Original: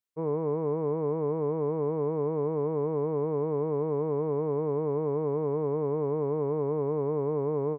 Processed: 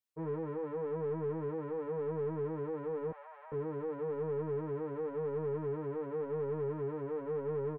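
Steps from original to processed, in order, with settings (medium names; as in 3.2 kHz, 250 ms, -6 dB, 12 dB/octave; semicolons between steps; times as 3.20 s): in parallel at -1 dB: peak limiter -30 dBFS, peak gain reduction 10.5 dB; on the sum: saturation -22.5 dBFS, distortion -15 dB; 3.11–3.52 s: rippled Chebyshev high-pass 560 Hz, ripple 3 dB; endless flanger 8.8 ms -0.94 Hz; trim -5 dB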